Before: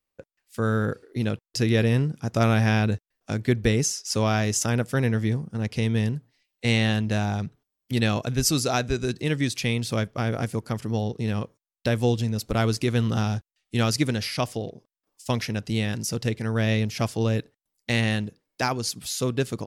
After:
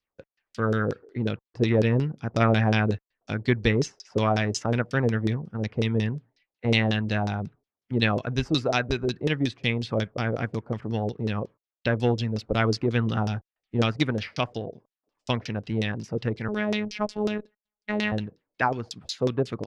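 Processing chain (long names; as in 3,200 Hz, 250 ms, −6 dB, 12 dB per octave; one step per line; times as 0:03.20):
0:16.48–0:18.12: phases set to zero 211 Hz
harmonic generator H 3 −23 dB, 5 −34 dB, 7 −32 dB, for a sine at −7.5 dBFS
auto-filter low-pass saw down 5.5 Hz 390–5,600 Hz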